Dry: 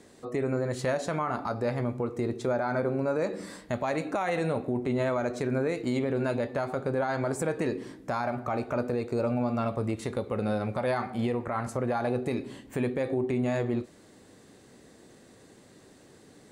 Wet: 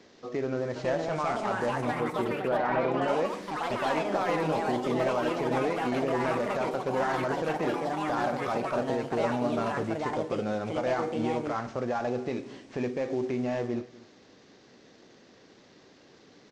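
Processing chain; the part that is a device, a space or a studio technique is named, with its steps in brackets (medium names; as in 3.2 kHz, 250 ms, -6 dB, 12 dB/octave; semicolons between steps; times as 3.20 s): early wireless headset (high-pass 200 Hz 6 dB/octave; CVSD coder 32 kbps); 1.71–3.08 s: low-pass 2.9 kHz 24 dB/octave; dynamic bell 4.3 kHz, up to -5 dB, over -54 dBFS, Q 1; delay 245 ms -21.5 dB; ever faster or slower copies 572 ms, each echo +4 st, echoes 3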